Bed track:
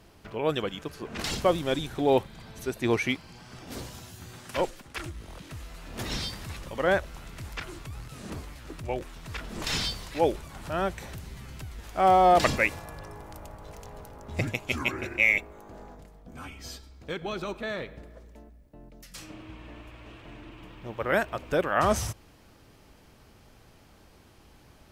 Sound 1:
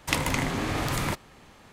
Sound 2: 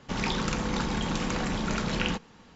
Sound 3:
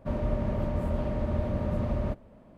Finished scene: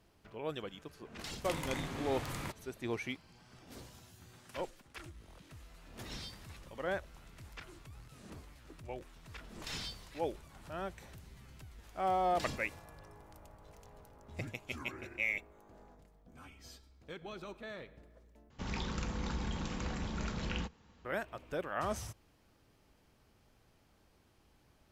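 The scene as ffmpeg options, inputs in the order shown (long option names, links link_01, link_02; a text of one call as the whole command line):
ffmpeg -i bed.wav -i cue0.wav -i cue1.wav -filter_complex "[0:a]volume=-12.5dB[link_01];[1:a]alimiter=limit=-11.5dB:level=0:latency=1:release=31[link_02];[2:a]equalizer=frequency=66:width_type=o:width=0.99:gain=13.5[link_03];[link_01]asplit=2[link_04][link_05];[link_04]atrim=end=18.504[link_06];[link_03]atrim=end=2.55,asetpts=PTS-STARTPTS,volume=-11.5dB[link_07];[link_05]atrim=start=21.046[link_08];[link_02]atrim=end=1.72,asetpts=PTS-STARTPTS,volume=-13dB,afade=type=in:duration=0.004:curve=hsin,afade=type=out:start_time=1.716:duration=0.004:curve=hsin,adelay=1370[link_09];[link_06][link_07]acrossfade=duration=0.004:curve1=hsin:curve2=hsin[link_10];[link_10][link_08]acrossfade=duration=0.004:curve1=hsin:curve2=hsin[link_11];[link_11][link_09]amix=inputs=2:normalize=0" out.wav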